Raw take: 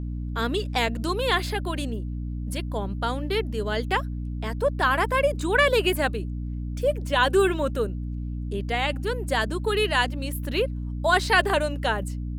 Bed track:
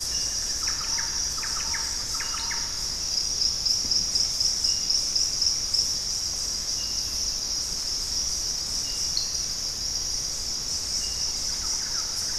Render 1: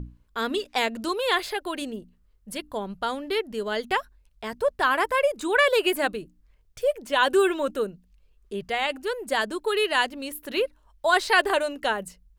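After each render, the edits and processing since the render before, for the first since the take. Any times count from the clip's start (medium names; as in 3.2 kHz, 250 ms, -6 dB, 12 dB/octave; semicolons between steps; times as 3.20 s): hum notches 60/120/180/240/300 Hz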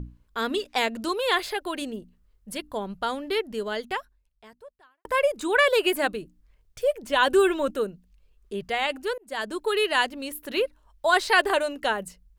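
3.57–5.05 s: fade out quadratic; 7.03–7.71 s: bass shelf 130 Hz +8.5 dB; 9.18–9.58 s: fade in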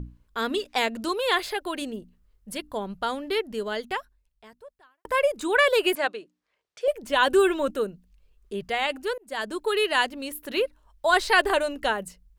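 5.95–6.88 s: band-pass 440–5700 Hz; 11.10–11.91 s: bass shelf 93 Hz +11 dB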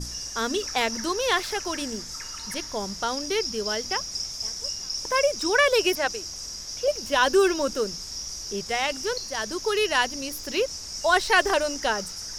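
add bed track -7.5 dB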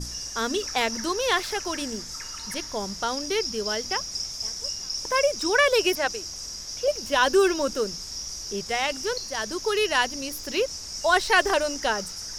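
no audible change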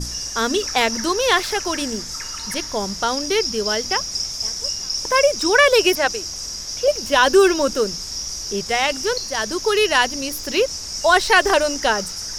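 trim +6.5 dB; peak limiter -3 dBFS, peak gain reduction 3 dB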